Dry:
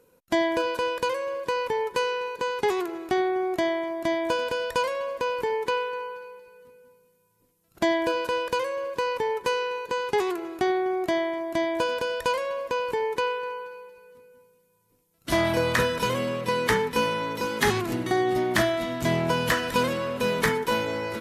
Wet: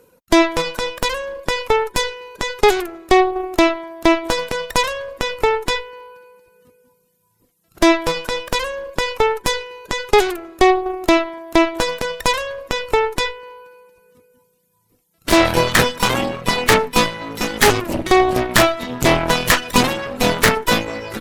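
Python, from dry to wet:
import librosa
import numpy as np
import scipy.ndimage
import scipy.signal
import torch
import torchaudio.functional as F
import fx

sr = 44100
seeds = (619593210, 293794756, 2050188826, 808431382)

y = fx.dereverb_blind(x, sr, rt60_s=1.2)
y = fx.cheby_harmonics(y, sr, harmonics=(6,), levels_db=(-9,), full_scale_db=-11.5)
y = F.gain(torch.from_numpy(y), 8.5).numpy()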